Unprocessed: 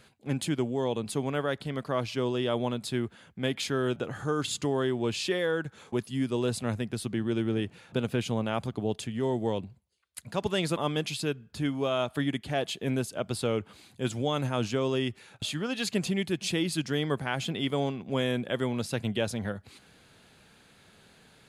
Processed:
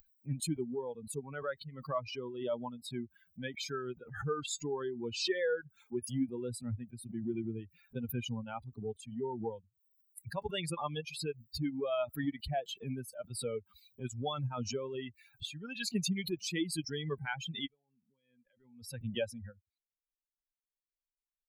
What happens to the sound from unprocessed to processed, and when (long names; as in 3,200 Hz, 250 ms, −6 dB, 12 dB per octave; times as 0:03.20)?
0:17.66–0:18.92: downward compressor, threshold −37 dBFS
whole clip: spectral dynamics exaggerated over time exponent 3; background raised ahead of every attack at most 79 dB per second